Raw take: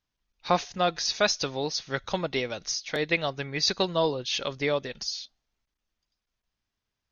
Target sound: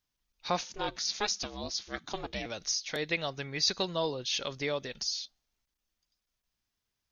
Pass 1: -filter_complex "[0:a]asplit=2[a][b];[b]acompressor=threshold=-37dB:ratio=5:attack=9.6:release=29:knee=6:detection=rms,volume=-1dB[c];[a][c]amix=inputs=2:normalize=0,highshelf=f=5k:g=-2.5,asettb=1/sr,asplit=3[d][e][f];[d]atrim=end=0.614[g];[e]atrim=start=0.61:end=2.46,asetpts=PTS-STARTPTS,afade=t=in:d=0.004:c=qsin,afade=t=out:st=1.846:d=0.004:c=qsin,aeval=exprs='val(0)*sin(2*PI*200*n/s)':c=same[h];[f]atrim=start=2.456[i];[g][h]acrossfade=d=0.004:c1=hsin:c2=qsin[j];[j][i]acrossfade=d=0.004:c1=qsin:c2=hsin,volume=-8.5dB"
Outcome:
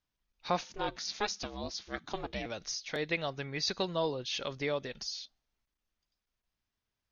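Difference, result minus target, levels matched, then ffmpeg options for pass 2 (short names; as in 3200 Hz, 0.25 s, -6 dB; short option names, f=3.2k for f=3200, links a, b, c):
8000 Hz band -4.0 dB
-filter_complex "[0:a]asplit=2[a][b];[b]acompressor=threshold=-37dB:ratio=5:attack=9.6:release=29:knee=6:detection=rms,volume=-1dB[c];[a][c]amix=inputs=2:normalize=0,highshelf=f=5k:g=9,asettb=1/sr,asplit=3[d][e][f];[d]atrim=end=0.614[g];[e]atrim=start=0.61:end=2.46,asetpts=PTS-STARTPTS,afade=t=in:d=0.004:c=qsin,afade=t=out:st=1.846:d=0.004:c=qsin,aeval=exprs='val(0)*sin(2*PI*200*n/s)':c=same[h];[f]atrim=start=2.456[i];[g][h]acrossfade=d=0.004:c1=hsin:c2=qsin[j];[j][i]acrossfade=d=0.004:c1=qsin:c2=hsin,volume=-8.5dB"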